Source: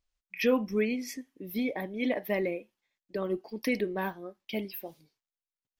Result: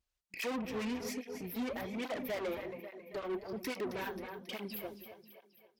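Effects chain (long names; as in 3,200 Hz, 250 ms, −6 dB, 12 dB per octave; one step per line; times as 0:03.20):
echo with a time of its own for lows and highs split 410 Hz, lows 173 ms, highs 270 ms, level −12.5 dB
tube saturation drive 37 dB, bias 0.6
through-zero flanger with one copy inverted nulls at 1.2 Hz, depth 7.1 ms
level +4.5 dB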